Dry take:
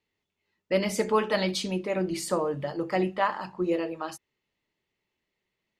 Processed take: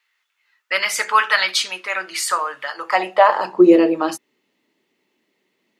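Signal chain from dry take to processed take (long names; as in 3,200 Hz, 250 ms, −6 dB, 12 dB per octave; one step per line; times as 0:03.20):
high-pass filter sweep 1,400 Hz → 260 Hz, 0:02.74–0:03.75
boost into a limiter +12.5 dB
level −1 dB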